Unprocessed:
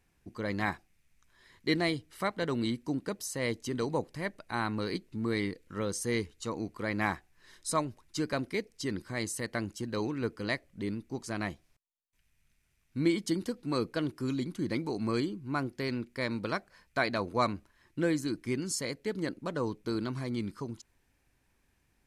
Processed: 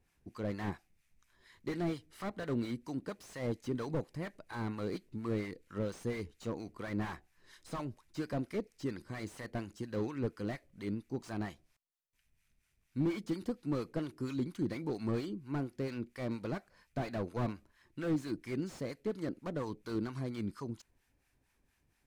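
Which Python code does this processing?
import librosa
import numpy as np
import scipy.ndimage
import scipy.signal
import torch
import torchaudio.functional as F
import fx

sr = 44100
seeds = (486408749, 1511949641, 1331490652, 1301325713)

y = fx.harmonic_tremolo(x, sr, hz=4.3, depth_pct=70, crossover_hz=780.0)
y = fx.slew_limit(y, sr, full_power_hz=13.0)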